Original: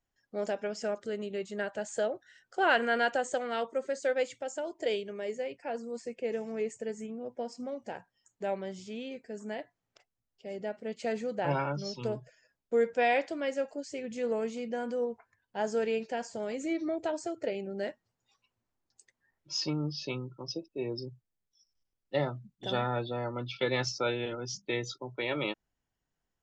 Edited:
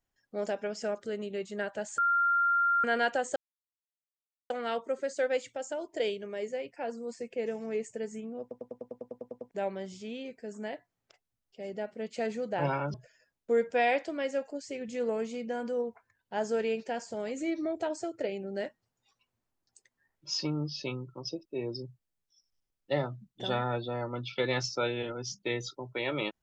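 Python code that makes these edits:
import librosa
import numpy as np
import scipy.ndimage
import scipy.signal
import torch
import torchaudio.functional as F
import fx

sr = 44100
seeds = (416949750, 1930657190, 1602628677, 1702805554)

y = fx.edit(x, sr, fx.bleep(start_s=1.98, length_s=0.86, hz=1390.0, db=-23.0),
    fx.insert_silence(at_s=3.36, length_s=1.14),
    fx.stutter_over(start_s=7.27, slice_s=0.1, count=11),
    fx.cut(start_s=11.8, length_s=0.37), tone=tone)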